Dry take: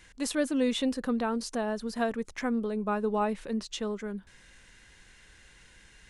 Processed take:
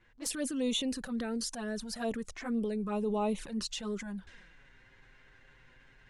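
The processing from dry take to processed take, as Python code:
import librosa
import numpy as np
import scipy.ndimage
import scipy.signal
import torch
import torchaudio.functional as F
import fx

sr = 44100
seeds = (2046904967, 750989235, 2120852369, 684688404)

y = fx.transient(x, sr, attack_db=-6, sustain_db=4)
y = fx.high_shelf(y, sr, hz=4300.0, db=8.0)
y = fx.env_lowpass(y, sr, base_hz=1500.0, full_db=-30.0)
y = fx.rider(y, sr, range_db=4, speed_s=2.0)
y = fx.env_flanger(y, sr, rest_ms=9.3, full_db=-25.0)
y = y * librosa.db_to_amplitude(-2.5)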